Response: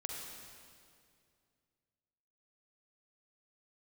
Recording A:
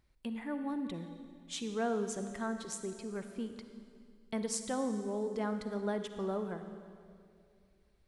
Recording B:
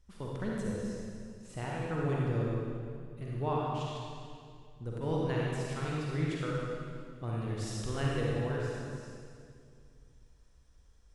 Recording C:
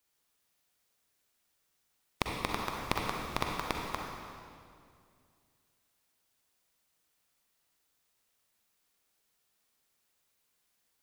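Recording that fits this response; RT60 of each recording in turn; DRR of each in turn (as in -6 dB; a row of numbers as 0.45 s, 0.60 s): C; 2.3 s, 2.3 s, 2.3 s; 8.0 dB, -4.5 dB, -0.5 dB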